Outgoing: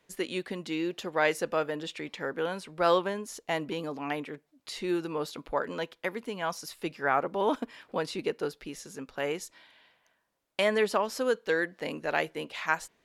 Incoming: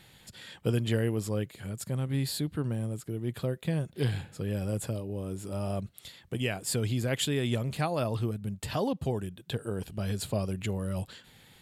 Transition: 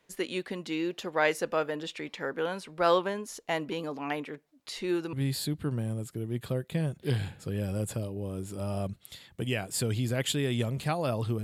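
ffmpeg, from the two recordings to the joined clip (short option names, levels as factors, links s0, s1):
-filter_complex "[0:a]apad=whole_dur=11.43,atrim=end=11.43,atrim=end=5.132[s0];[1:a]atrim=start=2.058:end=8.36[s1];[s0][s1]acrossfade=d=0.004:c1=hsin:c2=hsin"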